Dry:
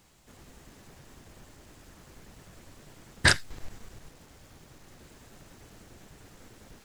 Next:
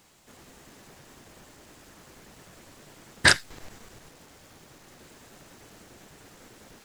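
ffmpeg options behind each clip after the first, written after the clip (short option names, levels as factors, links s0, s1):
-af "lowshelf=f=120:g=-12,volume=1.5"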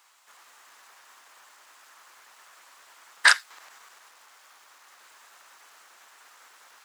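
-af "highpass=f=1100:t=q:w=1.9,volume=0.841"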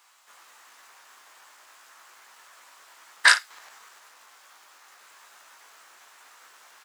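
-af "aecho=1:1:18|55:0.501|0.224"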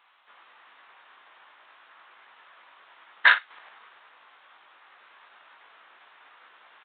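-af "aresample=8000,aresample=44100"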